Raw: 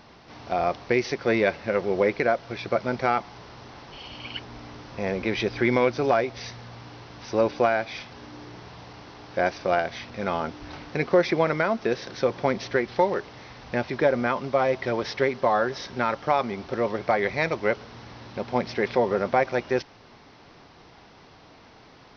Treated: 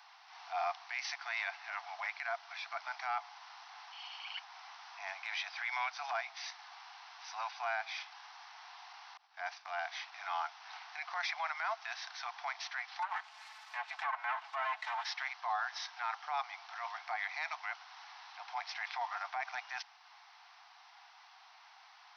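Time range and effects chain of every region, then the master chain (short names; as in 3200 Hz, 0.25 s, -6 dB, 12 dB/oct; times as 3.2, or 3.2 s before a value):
9.17–9.79 expander -35 dBFS + compressor 2:1, threshold -26 dBFS
13.02–15.05 minimum comb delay 4.6 ms + treble ducked by the level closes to 2100 Hz, closed at -19.5 dBFS
whole clip: steep high-pass 720 Hz 96 dB/oct; limiter -20.5 dBFS; transient shaper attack -6 dB, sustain -2 dB; gain -4.5 dB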